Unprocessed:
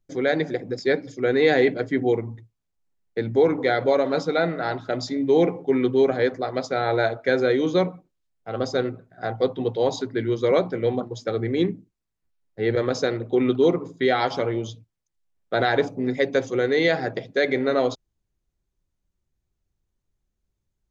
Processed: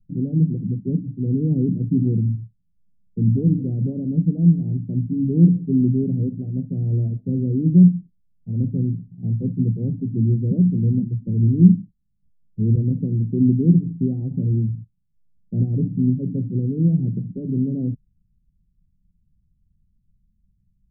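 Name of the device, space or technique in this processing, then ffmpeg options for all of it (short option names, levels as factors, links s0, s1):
the neighbour's flat through the wall: -af "lowpass=f=200:w=0.5412,lowpass=f=200:w=1.3066,tiltshelf=f=1300:g=6.5,equalizer=f=190:t=o:w=0.66:g=7.5,volume=2.11"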